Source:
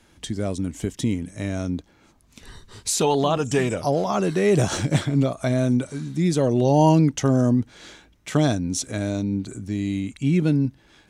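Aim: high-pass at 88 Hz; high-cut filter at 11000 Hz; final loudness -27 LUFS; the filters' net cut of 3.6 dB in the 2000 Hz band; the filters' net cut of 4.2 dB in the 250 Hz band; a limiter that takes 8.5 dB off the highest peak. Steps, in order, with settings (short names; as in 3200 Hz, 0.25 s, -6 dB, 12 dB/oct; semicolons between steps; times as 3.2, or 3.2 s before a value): HPF 88 Hz; LPF 11000 Hz; bell 250 Hz -5.5 dB; bell 2000 Hz -4.5 dB; limiter -15.5 dBFS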